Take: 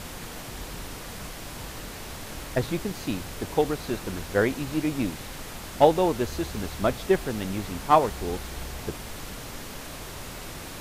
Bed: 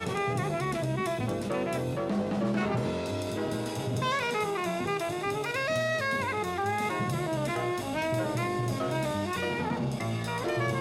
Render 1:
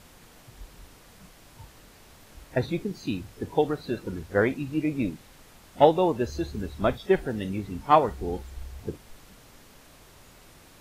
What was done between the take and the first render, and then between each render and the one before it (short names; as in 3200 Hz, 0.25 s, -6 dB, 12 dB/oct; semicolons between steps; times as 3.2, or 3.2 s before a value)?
noise print and reduce 14 dB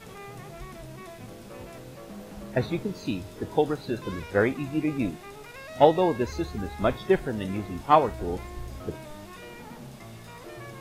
add bed -13 dB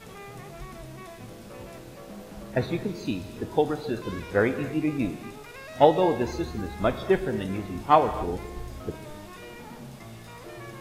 non-linear reverb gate 0.3 s flat, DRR 11 dB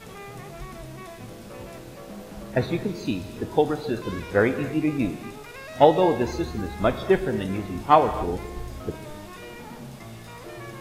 gain +2.5 dB; limiter -3 dBFS, peak gain reduction 1 dB